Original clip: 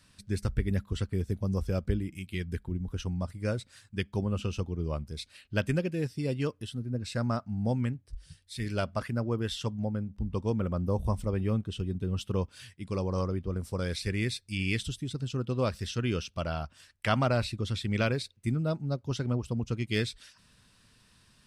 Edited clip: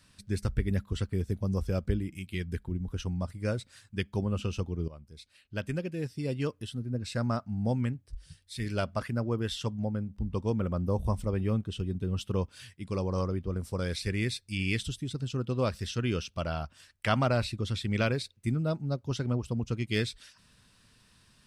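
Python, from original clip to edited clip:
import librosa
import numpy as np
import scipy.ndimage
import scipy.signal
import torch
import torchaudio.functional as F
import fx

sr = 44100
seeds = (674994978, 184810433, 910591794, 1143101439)

y = fx.edit(x, sr, fx.fade_in_from(start_s=4.88, length_s=1.7, floor_db=-16.5), tone=tone)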